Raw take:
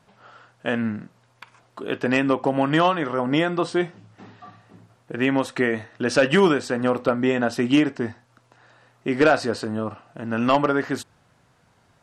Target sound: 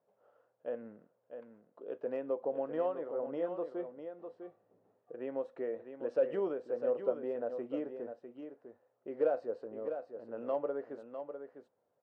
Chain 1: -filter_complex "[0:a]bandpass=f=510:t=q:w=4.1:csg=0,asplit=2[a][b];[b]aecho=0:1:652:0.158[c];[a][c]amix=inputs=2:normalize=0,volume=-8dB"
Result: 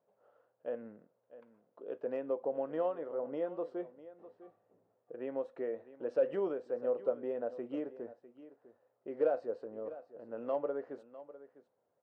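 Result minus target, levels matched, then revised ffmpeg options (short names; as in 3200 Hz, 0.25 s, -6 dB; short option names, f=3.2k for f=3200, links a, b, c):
echo-to-direct -7.5 dB
-filter_complex "[0:a]bandpass=f=510:t=q:w=4.1:csg=0,asplit=2[a][b];[b]aecho=0:1:652:0.376[c];[a][c]amix=inputs=2:normalize=0,volume=-8dB"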